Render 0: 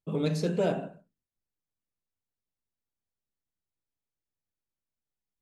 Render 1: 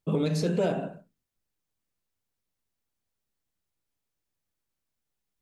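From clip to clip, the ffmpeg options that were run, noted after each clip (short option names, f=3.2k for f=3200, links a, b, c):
-af "alimiter=limit=-23.5dB:level=0:latency=1:release=208,volume=6.5dB"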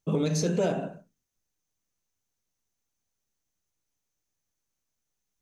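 -af "equalizer=f=6.2k:w=5.3:g=12.5"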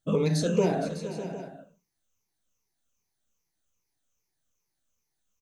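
-af "afftfilt=real='re*pow(10,12/40*sin(2*PI*(0.81*log(max(b,1)*sr/1024/100)/log(2)-(-2.5)*(pts-256)/sr)))':imag='im*pow(10,12/40*sin(2*PI*(0.81*log(max(b,1)*sr/1024/100)/log(2)-(-2.5)*(pts-256)/sr)))':win_size=1024:overlap=0.75,aecho=1:1:464|602|759:0.2|0.224|0.141"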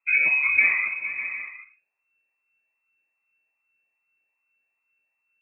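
-af "lowpass=f=2.3k:t=q:w=0.5098,lowpass=f=2.3k:t=q:w=0.6013,lowpass=f=2.3k:t=q:w=0.9,lowpass=f=2.3k:t=q:w=2.563,afreqshift=-2700,volume=4dB"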